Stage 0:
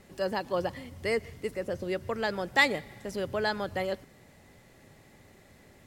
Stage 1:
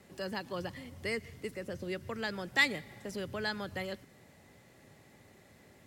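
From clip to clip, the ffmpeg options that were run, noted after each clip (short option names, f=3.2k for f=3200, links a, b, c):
-filter_complex "[0:a]highpass=71,acrossover=split=340|1200|1900[a][b][c][d];[b]acompressor=threshold=-41dB:ratio=6[e];[a][e][c][d]amix=inputs=4:normalize=0,volume=-2.5dB"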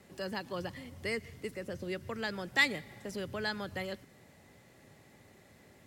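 -af anull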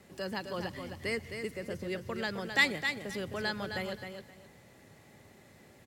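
-af "aecho=1:1:262|524|786:0.447|0.0938|0.0197,volume=1dB"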